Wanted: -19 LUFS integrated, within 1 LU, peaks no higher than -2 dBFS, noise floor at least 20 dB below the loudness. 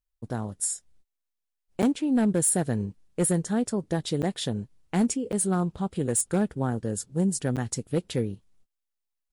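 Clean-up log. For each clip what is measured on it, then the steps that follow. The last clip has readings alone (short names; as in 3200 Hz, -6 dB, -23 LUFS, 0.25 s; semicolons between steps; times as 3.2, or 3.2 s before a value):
clipped 0.3%; flat tops at -17.0 dBFS; dropouts 4; longest dropout 7.9 ms; loudness -27.5 LUFS; peak -17.0 dBFS; loudness target -19.0 LUFS
-> clip repair -17 dBFS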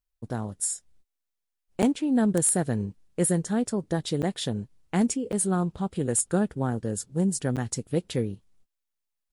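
clipped 0.0%; dropouts 4; longest dropout 7.9 ms
-> interpolate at 1.82/4.22/5.32/7.56, 7.9 ms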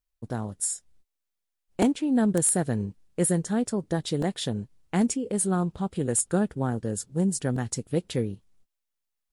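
dropouts 0; loudness -27.0 LUFS; peak -8.0 dBFS; loudness target -19.0 LUFS
-> gain +8 dB; limiter -2 dBFS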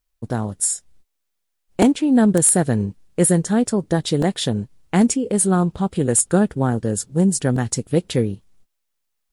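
loudness -19.0 LUFS; peak -2.0 dBFS; noise floor -75 dBFS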